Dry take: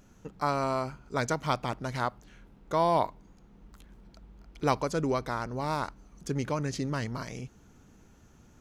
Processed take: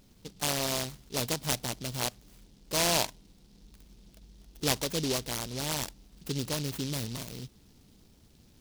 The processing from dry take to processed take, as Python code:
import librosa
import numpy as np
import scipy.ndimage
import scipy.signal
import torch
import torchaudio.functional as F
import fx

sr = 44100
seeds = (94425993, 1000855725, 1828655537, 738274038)

y = fx.noise_mod_delay(x, sr, seeds[0], noise_hz=4200.0, depth_ms=0.23)
y = y * librosa.db_to_amplitude(-2.0)